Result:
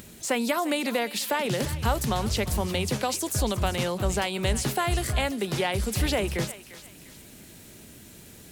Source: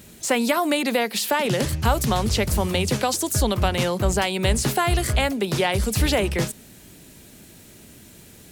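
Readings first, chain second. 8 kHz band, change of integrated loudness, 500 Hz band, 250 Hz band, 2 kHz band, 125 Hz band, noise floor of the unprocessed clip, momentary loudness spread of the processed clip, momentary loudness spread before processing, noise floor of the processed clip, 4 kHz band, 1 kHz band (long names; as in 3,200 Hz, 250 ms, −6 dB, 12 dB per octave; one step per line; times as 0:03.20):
−4.5 dB, −5.0 dB, −5.0 dB, −5.0 dB, −5.0 dB, −5.0 dB, −47 dBFS, 21 LU, 2 LU, −49 dBFS, −4.5 dB, −5.0 dB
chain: feedback echo with a high-pass in the loop 350 ms, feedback 36%, high-pass 1,000 Hz, level −12.5 dB
upward compression, threshold −36 dBFS
level −5 dB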